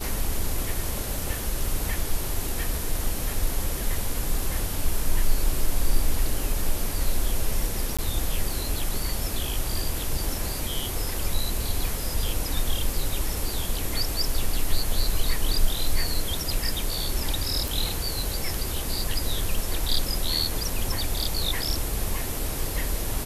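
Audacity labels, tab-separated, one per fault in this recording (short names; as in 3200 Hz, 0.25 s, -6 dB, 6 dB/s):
7.970000	7.990000	gap 16 ms
17.680000	17.680000	pop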